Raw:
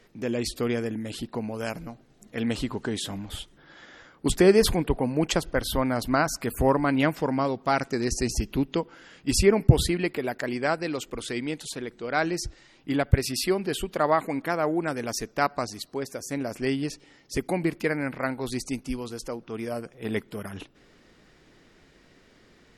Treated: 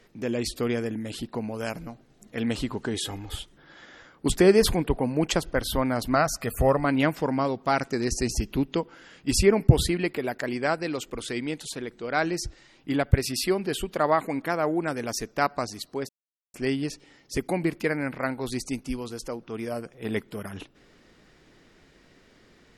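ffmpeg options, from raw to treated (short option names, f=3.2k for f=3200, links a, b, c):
-filter_complex "[0:a]asettb=1/sr,asplit=3[a][b][c];[a]atrim=end=2.944[d];[b]atrim=start=2.94:end=3.36,asetpts=PTS-STARTPTS,afade=t=in:d=0.004:c=qsin,afade=t=out:st=0.416:d=0.004:c=qsin,aecho=1:1:2.4:0.65,atrim=end_sample=18522[e];[c]atrim=start=3.356[f];[d][e]acrossfade=d=0.004:c1=hsin:c2=qsin[g];[g][f]acrossfade=d=0.004:c1=qsin:c2=hsin,asettb=1/sr,asplit=3[h][i][j];[h]atrim=end=6.154[k];[i]atrim=start=6.15:end=6.85,asetpts=PTS-STARTPTS,afade=t=in:d=0.004:c=qsin,afade=t=out:st=0.696:d=0.004:c=qsin,aecho=1:1:1.6:0.46,atrim=end_sample=30870[l];[j]atrim=start=6.846[m];[k][l]acrossfade=d=0.004:c1=hsin:c2=qsin[n];[n][m]acrossfade=d=0.004:c1=qsin:c2=hsin,asplit=3[o][p][q];[o]atrim=end=16.09,asetpts=PTS-STARTPTS,afade=t=out:st=16.086:d=0.004:c=hsin[r];[p]atrim=start=16.09:end=16.54,asetpts=PTS-STARTPTS,volume=0[s];[q]atrim=start=16.54,asetpts=PTS-STARTPTS,afade=t=in:d=0.004:c=hsin[t];[r][s][t]concat=n=3:v=0:a=1"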